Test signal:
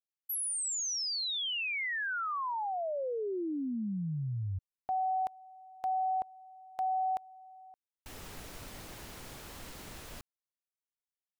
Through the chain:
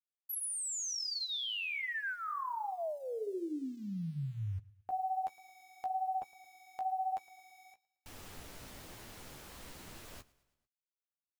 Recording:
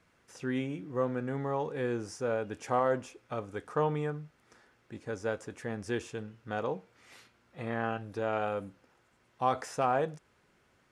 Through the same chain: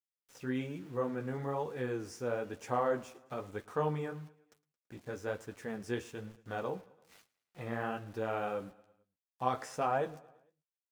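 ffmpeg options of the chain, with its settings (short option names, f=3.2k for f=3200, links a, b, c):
-af "aeval=exprs='val(0)*gte(abs(val(0)),0.00266)':c=same,aecho=1:1:111|222|333|444:0.0794|0.0437|0.024|0.0132,flanger=delay=8.2:depth=8.8:regen=-23:speed=1.1:shape=triangular"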